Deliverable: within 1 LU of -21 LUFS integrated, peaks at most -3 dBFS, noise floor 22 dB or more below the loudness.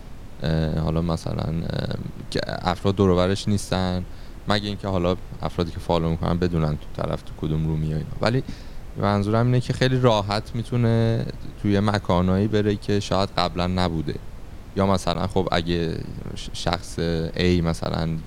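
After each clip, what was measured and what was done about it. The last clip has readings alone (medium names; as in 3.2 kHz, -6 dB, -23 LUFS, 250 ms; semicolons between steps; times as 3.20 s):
dropouts 2; longest dropout 9.5 ms; noise floor -38 dBFS; noise floor target -46 dBFS; loudness -23.5 LUFS; peak level -3.5 dBFS; loudness target -21.0 LUFS
-> interpolate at 15.14/17.85 s, 9.5 ms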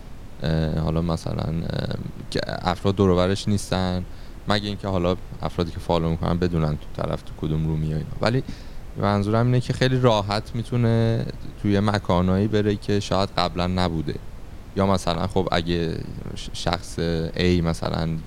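dropouts 0; noise floor -38 dBFS; noise floor target -46 dBFS
-> noise print and reduce 8 dB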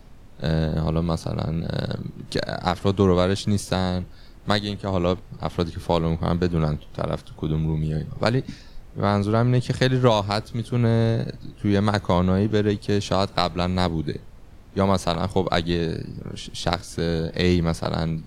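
noise floor -44 dBFS; noise floor target -46 dBFS
-> noise print and reduce 6 dB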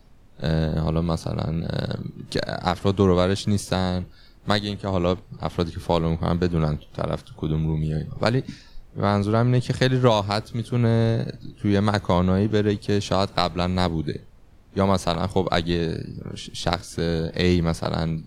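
noise floor -49 dBFS; loudness -24.0 LUFS; peak level -3.5 dBFS; loudness target -21.0 LUFS
-> trim +3 dB; peak limiter -3 dBFS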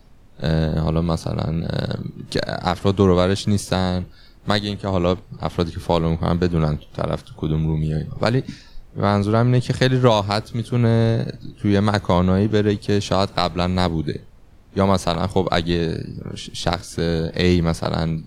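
loudness -21.0 LUFS; peak level -3.0 dBFS; noise floor -46 dBFS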